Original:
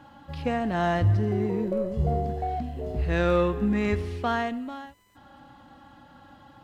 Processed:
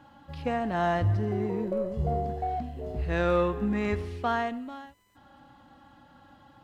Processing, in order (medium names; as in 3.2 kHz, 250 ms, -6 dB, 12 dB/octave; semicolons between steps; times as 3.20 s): dynamic bell 910 Hz, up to +4 dB, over -36 dBFS, Q 0.75; trim -4 dB